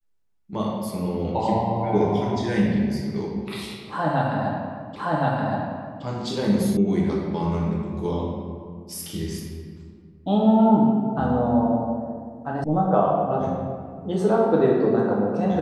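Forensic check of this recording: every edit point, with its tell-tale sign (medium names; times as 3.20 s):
4.96 s: repeat of the last 1.07 s
6.77 s: sound stops dead
12.64 s: sound stops dead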